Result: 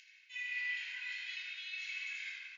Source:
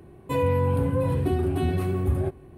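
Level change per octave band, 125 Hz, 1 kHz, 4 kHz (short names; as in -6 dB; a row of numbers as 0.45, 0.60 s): under -40 dB, under -35 dB, +3.0 dB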